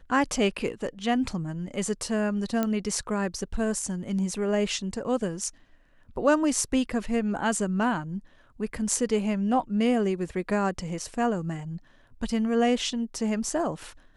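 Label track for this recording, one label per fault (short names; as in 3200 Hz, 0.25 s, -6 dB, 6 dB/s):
2.630000	2.630000	pop -13 dBFS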